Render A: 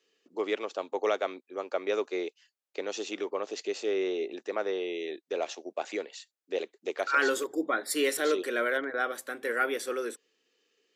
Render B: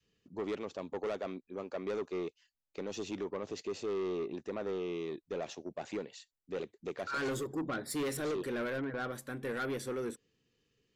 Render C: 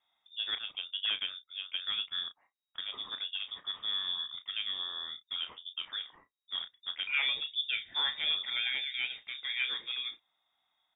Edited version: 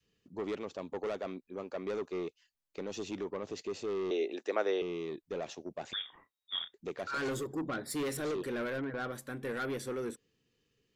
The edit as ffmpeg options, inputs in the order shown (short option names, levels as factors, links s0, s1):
-filter_complex "[1:a]asplit=3[s0][s1][s2];[s0]atrim=end=4.112[s3];[0:a]atrim=start=4.108:end=4.822[s4];[s1]atrim=start=4.818:end=5.932[s5];[2:a]atrim=start=5.928:end=6.742[s6];[s2]atrim=start=6.738[s7];[s3][s4]acrossfade=d=0.004:c1=hsin:c2=hsin[s8];[s8][s5]acrossfade=d=0.004:c1=hsin:c2=hsin[s9];[s9][s6]acrossfade=d=0.004:c1=hsin:c2=hsin[s10];[s10][s7]acrossfade=d=0.004:c1=hsin:c2=hsin"